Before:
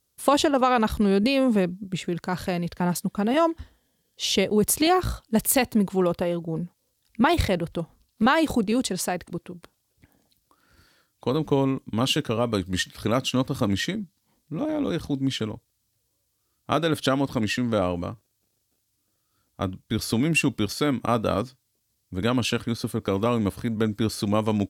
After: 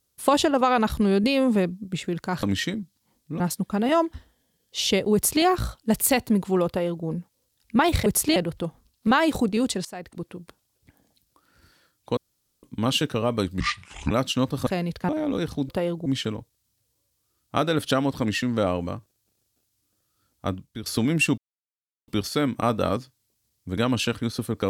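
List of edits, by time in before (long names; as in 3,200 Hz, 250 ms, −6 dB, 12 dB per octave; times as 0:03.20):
0:02.43–0:02.85: swap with 0:13.64–0:14.61
0:04.59–0:04.89: duplicate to 0:07.51
0:06.13–0:06.50: duplicate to 0:15.21
0:09.00–0:09.45: fade in, from −19.5 dB
0:11.32–0:11.78: fill with room tone
0:12.75–0:13.08: play speed 65%
0:19.65–0:20.01: fade out, to −14 dB
0:20.53: splice in silence 0.70 s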